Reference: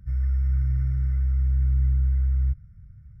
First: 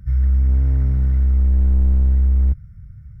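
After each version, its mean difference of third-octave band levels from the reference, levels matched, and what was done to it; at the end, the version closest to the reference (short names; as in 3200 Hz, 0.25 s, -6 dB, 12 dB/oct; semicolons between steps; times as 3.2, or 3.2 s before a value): 7.0 dB: slew limiter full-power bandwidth 6.4 Hz; gain +8 dB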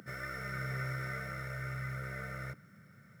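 15.5 dB: HPF 270 Hz 24 dB/oct; gain +17 dB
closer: first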